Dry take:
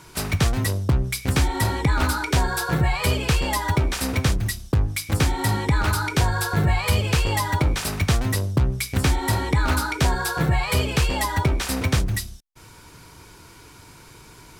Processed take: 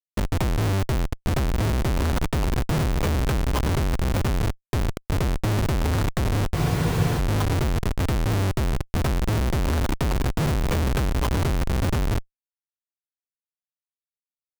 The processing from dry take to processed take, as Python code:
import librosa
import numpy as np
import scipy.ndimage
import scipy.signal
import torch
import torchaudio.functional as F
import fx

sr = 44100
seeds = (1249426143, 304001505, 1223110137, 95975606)

p1 = scipy.signal.sosfilt(scipy.signal.butter(2, 2800.0, 'lowpass', fs=sr, output='sos'), x)
p2 = fx.rider(p1, sr, range_db=10, speed_s=2.0)
p3 = p1 + (p2 * 10.0 ** (1.0 / 20.0))
p4 = fx.notch_comb(p3, sr, f0_hz=280.0)
p5 = p4 + fx.echo_feedback(p4, sr, ms=1074, feedback_pct=32, wet_db=-17.5, dry=0)
p6 = fx.schmitt(p5, sr, flips_db=-16.0)
p7 = fx.spec_freeze(p6, sr, seeds[0], at_s=6.56, hold_s=0.62)
y = p7 * 10.0 ** (-5.0 / 20.0)